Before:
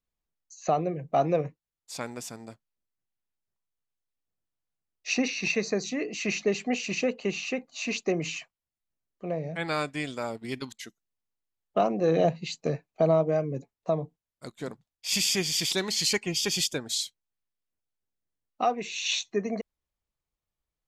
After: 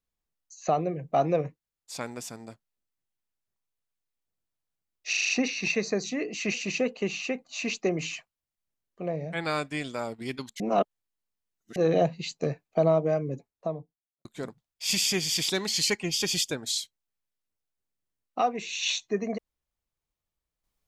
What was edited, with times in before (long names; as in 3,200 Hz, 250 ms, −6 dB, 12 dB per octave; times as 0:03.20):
0:05.09: stutter 0.04 s, 6 plays
0:06.34–0:06.77: remove
0:10.83–0:11.99: reverse
0:13.49–0:14.48: fade out and dull